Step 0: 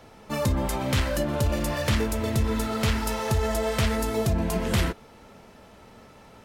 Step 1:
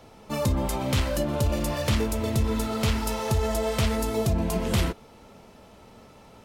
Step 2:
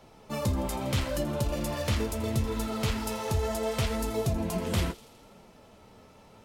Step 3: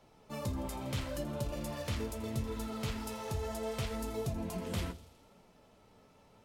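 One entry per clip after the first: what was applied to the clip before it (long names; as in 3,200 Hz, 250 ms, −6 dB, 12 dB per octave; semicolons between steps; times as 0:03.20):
parametric band 1,700 Hz −5 dB 0.64 octaves
flanger 0.74 Hz, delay 4.9 ms, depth 7.3 ms, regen −48%; delay with a high-pass on its return 82 ms, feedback 68%, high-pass 3,600 Hz, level −15 dB
rectangular room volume 310 cubic metres, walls furnished, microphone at 0.34 metres; level −8.5 dB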